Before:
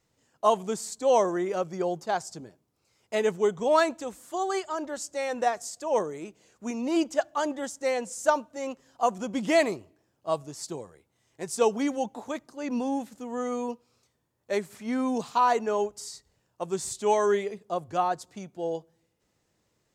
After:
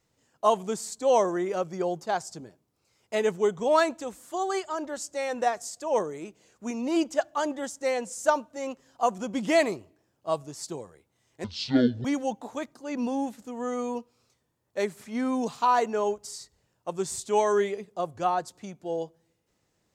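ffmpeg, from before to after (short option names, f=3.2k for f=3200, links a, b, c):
-filter_complex "[0:a]asplit=3[a][b][c];[a]atrim=end=11.444[d];[b]atrim=start=11.44:end=11.78,asetpts=PTS-STARTPTS,asetrate=24696,aresample=44100[e];[c]atrim=start=11.776[f];[d][e]acrossfade=d=0.004:c1=hsin:c2=hsin[g];[g][f]acrossfade=d=0.004:c1=hsin:c2=hsin"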